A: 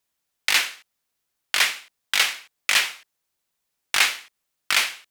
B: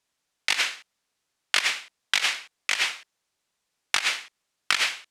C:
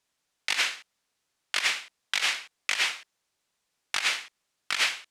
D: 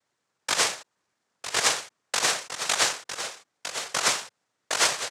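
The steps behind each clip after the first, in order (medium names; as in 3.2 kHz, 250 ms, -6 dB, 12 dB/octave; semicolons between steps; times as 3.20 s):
low-pass 8.4 kHz 12 dB/octave; bass shelf 110 Hz -4.5 dB; compressor with a negative ratio -23 dBFS, ratio -0.5
peak limiter -12.5 dBFS, peak gain reduction 9.5 dB
median filter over 9 samples; delay 955 ms -9.5 dB; noise-vocoded speech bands 3; trim +6 dB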